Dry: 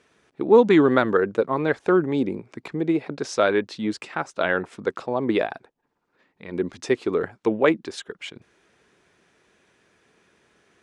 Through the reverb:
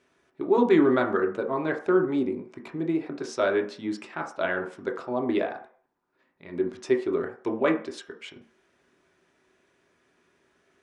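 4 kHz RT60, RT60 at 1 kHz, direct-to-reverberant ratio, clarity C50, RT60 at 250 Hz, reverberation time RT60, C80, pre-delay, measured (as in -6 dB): 0.45 s, 0.45 s, 2.0 dB, 10.5 dB, 0.35 s, 0.45 s, 14.5 dB, 3 ms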